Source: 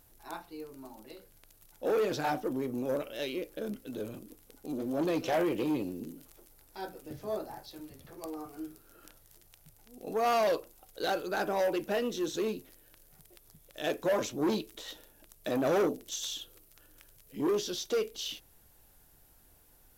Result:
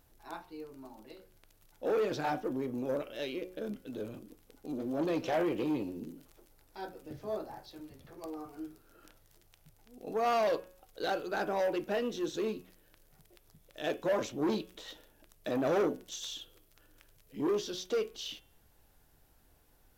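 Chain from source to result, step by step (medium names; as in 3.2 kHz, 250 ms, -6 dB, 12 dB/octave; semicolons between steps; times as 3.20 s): peaking EQ 12 kHz -8 dB 1.5 oct; de-hum 183.3 Hz, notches 19; trim -1.5 dB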